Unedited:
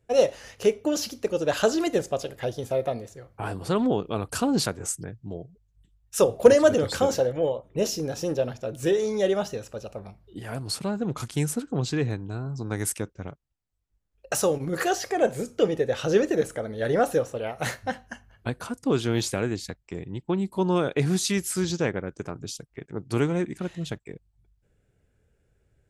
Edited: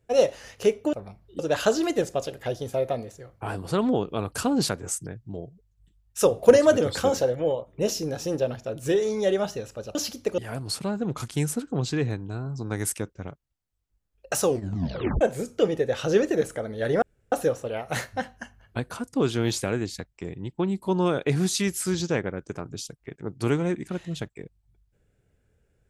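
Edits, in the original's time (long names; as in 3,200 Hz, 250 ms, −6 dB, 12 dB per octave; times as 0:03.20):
0:00.93–0:01.36: swap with 0:09.92–0:10.38
0:14.44: tape stop 0.77 s
0:17.02: splice in room tone 0.30 s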